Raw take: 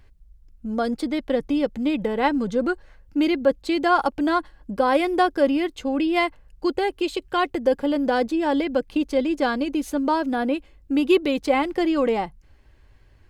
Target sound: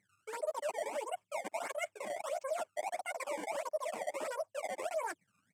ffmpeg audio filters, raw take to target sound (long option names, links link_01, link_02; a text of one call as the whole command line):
ffmpeg -i in.wav -af "afftdn=noise_reduction=27:noise_floor=-41,highshelf=frequency=2400:gain=-7.5,areverse,acompressor=threshold=-34dB:ratio=16,areverse,acrusher=samples=38:mix=1:aa=0.000001:lfo=1:lforange=60.8:lforate=0.64,flanger=delay=18.5:depth=4.8:speed=2.2,atempo=1.2,highpass=frequency=110:width=0.5412,highpass=frequency=110:width=1.3066,equalizer=frequency=110:width_type=q:width=4:gain=-6,equalizer=frequency=310:width_type=q:width=4:gain=8,equalizer=frequency=440:width_type=q:width=4:gain=6,equalizer=frequency=1100:width_type=q:width=4:gain=8,equalizer=frequency=2000:width_type=q:width=4:gain=-9,equalizer=frequency=4100:width_type=q:width=4:gain=10,lowpass=frequency=6300:width=0.5412,lowpass=frequency=6300:width=1.3066,asetrate=88200,aresample=44100,volume=-3dB" out.wav